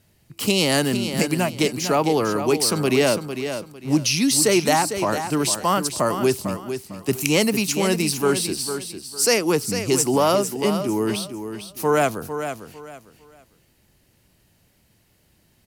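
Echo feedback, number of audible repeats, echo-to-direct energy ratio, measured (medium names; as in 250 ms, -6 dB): 26%, 3, -8.5 dB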